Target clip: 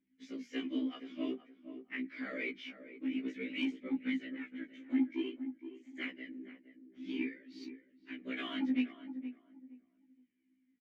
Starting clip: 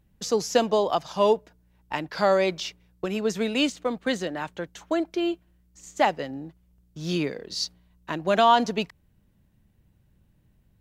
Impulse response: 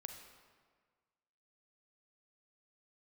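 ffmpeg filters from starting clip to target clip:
-filter_complex "[0:a]afftfilt=real='hypot(re,im)*cos(2*PI*random(0))':imag='hypot(re,im)*sin(2*PI*random(1))':win_size=512:overlap=0.75,asplit=3[a][b][c];[a]bandpass=f=270:t=q:w=8,volume=0dB[d];[b]bandpass=f=2.29k:t=q:w=8,volume=-6dB[e];[c]bandpass=f=3.01k:t=q:w=8,volume=-9dB[f];[d][e][f]amix=inputs=3:normalize=0,lowshelf=f=390:g=-7.5,bandreject=f=60:t=h:w=6,bandreject=f=120:t=h:w=6,bandreject=f=180:t=h:w=6,bandreject=f=240:t=h:w=6,aphaser=in_gain=1:out_gain=1:delay=4.2:decay=0.51:speed=0.51:type=triangular,asoftclip=type=tanh:threshold=-32dB,equalizer=f=125:t=o:w=1:g=-10,equalizer=f=250:t=o:w=1:g=10,equalizer=f=1k:t=o:w=1:g=6,equalizer=f=2k:t=o:w=1:g=10,equalizer=f=4k:t=o:w=1:g=-6,equalizer=f=8k:t=o:w=1:g=-4,asplit=2[g][h];[h]adelay=469,lowpass=f=1k:p=1,volume=-10dB,asplit=2[i][j];[j]adelay=469,lowpass=f=1k:p=1,volume=0.26,asplit=2[k][l];[l]adelay=469,lowpass=f=1k:p=1,volume=0.26[m];[g][i][k][m]amix=inputs=4:normalize=0,afftfilt=real='re*1.73*eq(mod(b,3),0)':imag='im*1.73*eq(mod(b,3),0)':win_size=2048:overlap=0.75,volume=4dB"

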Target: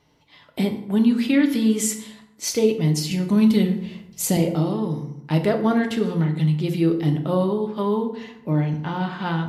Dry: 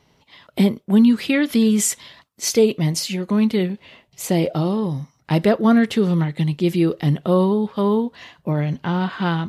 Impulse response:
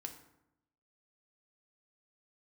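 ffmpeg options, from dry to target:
-filter_complex "[0:a]asettb=1/sr,asplit=3[a][b][c];[a]atrim=end=3.114[d];[b]atrim=start=3.11:end=4.37,asetpts=PTS-STARTPTS,afade=t=in:d=0.004:c=qsin,afade=t=out:st=1.256:d=0.004:c=qsin,bass=f=250:g=10,treble=f=4k:g=10[e];[c]atrim=start=4.366[f];[d][e]acrossfade=d=0.004:c1=hsin:c2=qsin[g];[g][f]acrossfade=d=0.004:c1=qsin:c2=hsin[h];[1:a]atrim=start_sample=2205[i];[h][i]afir=irnorm=-1:irlink=0"

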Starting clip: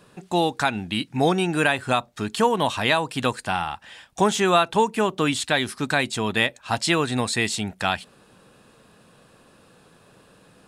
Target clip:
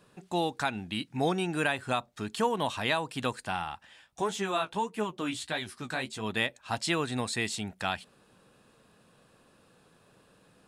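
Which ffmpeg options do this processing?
-filter_complex "[0:a]asplit=3[a][b][c];[a]afade=t=out:st=3.85:d=0.02[d];[b]flanger=delay=8.9:depth=9.7:regen=21:speed=1.6:shape=triangular,afade=t=in:st=3.85:d=0.02,afade=t=out:st=6.24:d=0.02[e];[c]afade=t=in:st=6.24:d=0.02[f];[d][e][f]amix=inputs=3:normalize=0,volume=-8dB"

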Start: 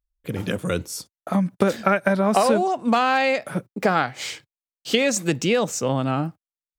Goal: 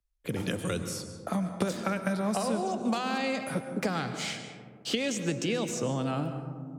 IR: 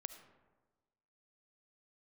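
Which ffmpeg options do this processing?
-filter_complex "[0:a]acrossover=split=100|260|3900[a][b][c][d];[a]acompressor=threshold=-49dB:ratio=4[e];[b]acompressor=threshold=-34dB:ratio=4[f];[c]acompressor=threshold=-33dB:ratio=4[g];[d]acompressor=threshold=-39dB:ratio=4[h];[e][f][g][h]amix=inputs=4:normalize=0[i];[1:a]atrim=start_sample=2205,asetrate=22491,aresample=44100[j];[i][j]afir=irnorm=-1:irlink=0,volume=1dB"

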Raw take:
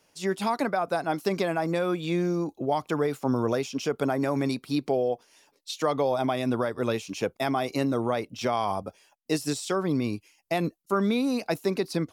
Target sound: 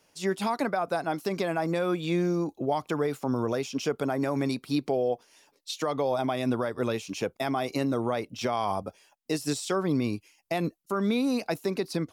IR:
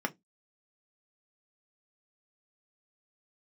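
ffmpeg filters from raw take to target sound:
-af "alimiter=limit=-17dB:level=0:latency=1:release=195"

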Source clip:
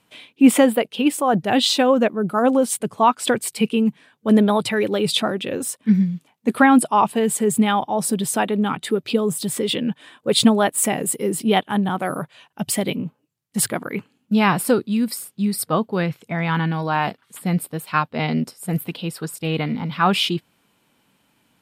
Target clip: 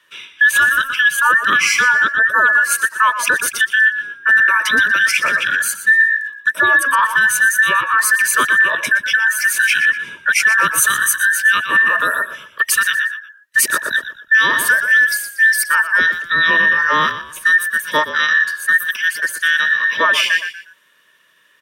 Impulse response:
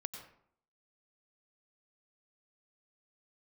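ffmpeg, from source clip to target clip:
-filter_complex "[0:a]afftfilt=real='real(if(between(b,1,1012),(2*floor((b-1)/92)+1)*92-b,b),0)':imag='imag(if(between(b,1,1012),(2*floor((b-1)/92)+1)*92-b,b),0)*if(between(b,1,1012),-1,1)':win_size=2048:overlap=0.75,highpass=150,equalizer=f=2.2k:w=1.1:g=7.5,asplit=2[a][b];[b]asplit=3[c][d][e];[c]adelay=120,afreqshift=-45,volume=-11.5dB[f];[d]adelay=240,afreqshift=-90,volume=-21.1dB[g];[e]adelay=360,afreqshift=-135,volume=-30.8dB[h];[f][g][h]amix=inputs=3:normalize=0[i];[a][i]amix=inputs=2:normalize=0,acrossover=split=330[j][k];[j]acompressor=threshold=-26dB:ratio=10[l];[l][k]amix=inputs=2:normalize=0,asuperstop=centerf=770:order=20:qfactor=3.5,alimiter=limit=-8dB:level=0:latency=1:release=186,adynamicequalizer=threshold=0.02:dfrequency=4900:dqfactor=0.7:tfrequency=4900:tqfactor=0.7:attack=5:release=100:ratio=0.375:range=2:mode=boostabove:tftype=highshelf,volume=3dB"

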